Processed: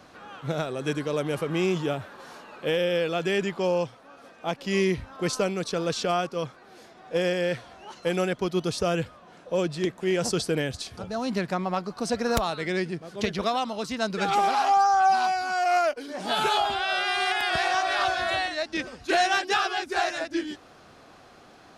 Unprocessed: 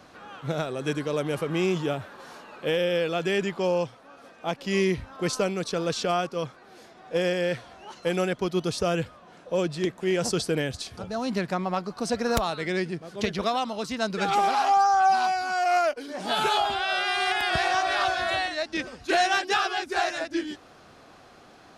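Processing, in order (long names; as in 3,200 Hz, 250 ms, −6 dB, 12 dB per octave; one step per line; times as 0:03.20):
0:17.25–0:17.99: low-shelf EQ 210 Hz −7 dB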